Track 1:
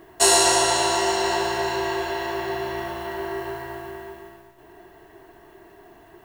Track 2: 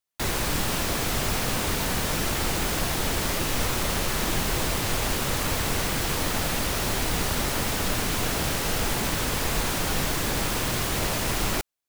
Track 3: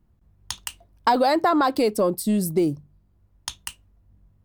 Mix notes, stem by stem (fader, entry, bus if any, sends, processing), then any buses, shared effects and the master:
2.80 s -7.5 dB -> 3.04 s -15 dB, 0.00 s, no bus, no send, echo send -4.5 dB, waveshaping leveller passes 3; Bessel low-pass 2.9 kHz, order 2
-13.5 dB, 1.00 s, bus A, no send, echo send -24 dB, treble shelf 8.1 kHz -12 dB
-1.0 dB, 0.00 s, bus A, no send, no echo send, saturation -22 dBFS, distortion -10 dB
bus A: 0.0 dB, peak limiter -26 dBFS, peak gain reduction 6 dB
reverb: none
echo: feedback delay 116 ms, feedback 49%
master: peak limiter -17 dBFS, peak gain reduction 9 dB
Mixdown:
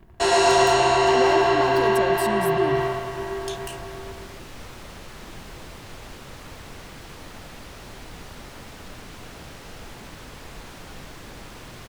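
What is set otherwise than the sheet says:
stem 3 -1.0 dB -> +11.0 dB; master: missing peak limiter -17 dBFS, peak gain reduction 9 dB

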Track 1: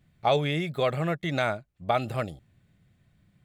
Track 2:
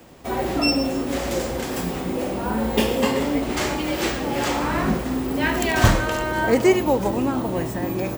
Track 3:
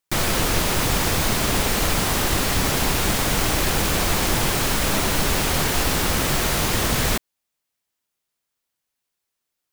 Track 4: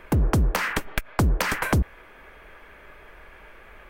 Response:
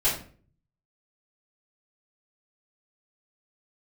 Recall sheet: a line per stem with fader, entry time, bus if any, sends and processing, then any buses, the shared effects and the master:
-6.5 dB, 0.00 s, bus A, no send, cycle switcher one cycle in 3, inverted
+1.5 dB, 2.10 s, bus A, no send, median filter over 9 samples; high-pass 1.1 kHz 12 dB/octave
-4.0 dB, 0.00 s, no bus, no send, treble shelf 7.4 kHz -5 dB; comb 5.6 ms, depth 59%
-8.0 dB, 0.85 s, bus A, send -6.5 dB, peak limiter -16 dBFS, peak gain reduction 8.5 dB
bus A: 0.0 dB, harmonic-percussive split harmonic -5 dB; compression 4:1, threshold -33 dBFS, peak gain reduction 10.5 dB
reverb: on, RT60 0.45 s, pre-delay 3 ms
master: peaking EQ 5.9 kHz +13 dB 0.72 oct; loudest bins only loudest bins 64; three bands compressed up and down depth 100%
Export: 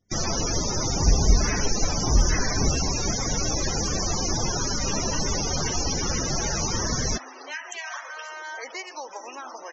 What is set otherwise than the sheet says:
stem 3: missing comb 5.6 ms, depth 59%; master: missing three bands compressed up and down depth 100%

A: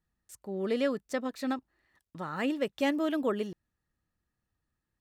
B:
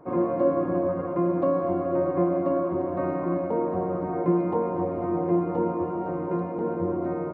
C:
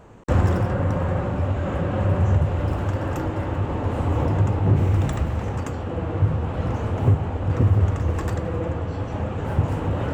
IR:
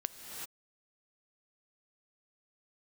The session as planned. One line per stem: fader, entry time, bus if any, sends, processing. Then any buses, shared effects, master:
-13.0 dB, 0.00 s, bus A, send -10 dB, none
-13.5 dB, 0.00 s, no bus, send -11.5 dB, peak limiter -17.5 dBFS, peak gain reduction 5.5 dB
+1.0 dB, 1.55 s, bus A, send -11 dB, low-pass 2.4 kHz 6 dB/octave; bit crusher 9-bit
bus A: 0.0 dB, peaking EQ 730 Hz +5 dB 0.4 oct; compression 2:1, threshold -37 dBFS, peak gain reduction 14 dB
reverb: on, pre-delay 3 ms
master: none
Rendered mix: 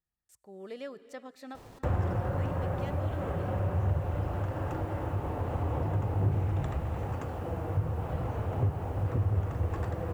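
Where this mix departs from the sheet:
stem B: muted; stem C +1.0 dB -> -5.5 dB; master: extra peaking EQ 230 Hz -5 dB 0.68 oct

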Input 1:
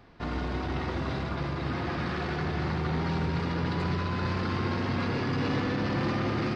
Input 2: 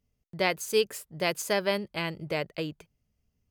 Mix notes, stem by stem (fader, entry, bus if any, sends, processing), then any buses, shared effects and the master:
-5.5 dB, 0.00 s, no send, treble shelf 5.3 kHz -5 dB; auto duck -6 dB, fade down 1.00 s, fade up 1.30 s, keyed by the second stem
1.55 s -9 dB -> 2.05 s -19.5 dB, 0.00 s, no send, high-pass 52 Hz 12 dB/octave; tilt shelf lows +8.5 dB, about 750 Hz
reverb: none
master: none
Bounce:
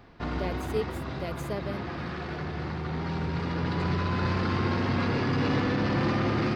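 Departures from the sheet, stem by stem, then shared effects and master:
stem 1 -5.5 dB -> +2.5 dB; master: extra treble shelf 9.3 kHz +6 dB

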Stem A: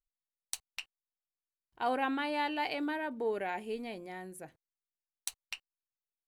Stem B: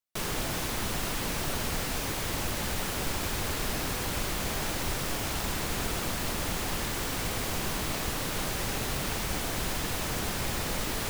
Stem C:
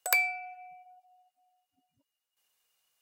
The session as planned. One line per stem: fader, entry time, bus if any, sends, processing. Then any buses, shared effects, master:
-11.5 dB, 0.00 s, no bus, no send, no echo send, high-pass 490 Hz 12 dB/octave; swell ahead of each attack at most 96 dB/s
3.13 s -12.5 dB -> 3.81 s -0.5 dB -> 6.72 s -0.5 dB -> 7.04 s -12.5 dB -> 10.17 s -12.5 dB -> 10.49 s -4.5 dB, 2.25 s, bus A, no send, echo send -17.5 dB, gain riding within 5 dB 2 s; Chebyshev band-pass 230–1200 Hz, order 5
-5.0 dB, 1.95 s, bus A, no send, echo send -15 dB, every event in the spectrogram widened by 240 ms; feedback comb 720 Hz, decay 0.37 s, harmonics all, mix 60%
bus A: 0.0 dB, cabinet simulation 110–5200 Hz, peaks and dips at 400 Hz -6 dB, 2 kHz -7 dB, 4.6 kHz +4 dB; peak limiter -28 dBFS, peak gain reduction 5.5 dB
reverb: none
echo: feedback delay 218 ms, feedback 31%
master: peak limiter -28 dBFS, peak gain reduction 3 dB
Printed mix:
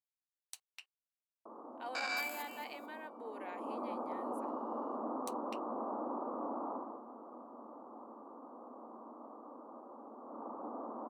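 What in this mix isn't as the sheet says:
stem A: missing swell ahead of each attack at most 96 dB/s; stem B: entry 2.25 s -> 1.30 s; master: missing peak limiter -28 dBFS, peak gain reduction 3 dB

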